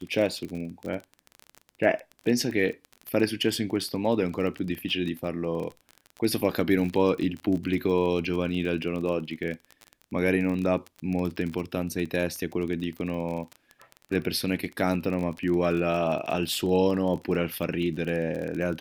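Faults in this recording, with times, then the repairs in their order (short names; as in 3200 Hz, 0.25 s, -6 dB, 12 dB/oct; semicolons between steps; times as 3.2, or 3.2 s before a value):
crackle 28/s -31 dBFS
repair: de-click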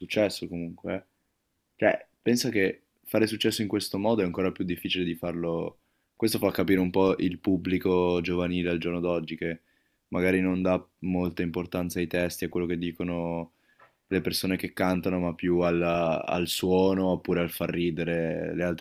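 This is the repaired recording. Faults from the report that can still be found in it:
none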